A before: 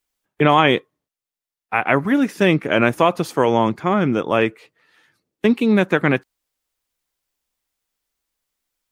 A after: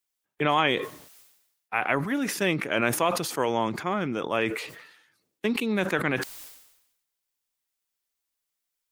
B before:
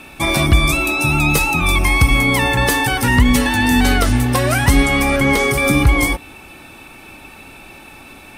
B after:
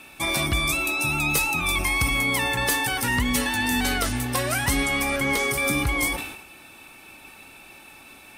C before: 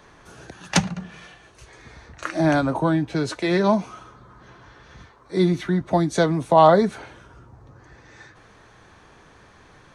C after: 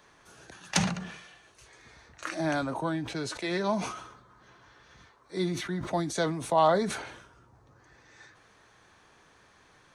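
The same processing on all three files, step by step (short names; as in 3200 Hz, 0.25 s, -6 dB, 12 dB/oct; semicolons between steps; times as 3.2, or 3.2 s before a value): tilt +1.5 dB/oct; sustainer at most 63 dB/s; gain -8.5 dB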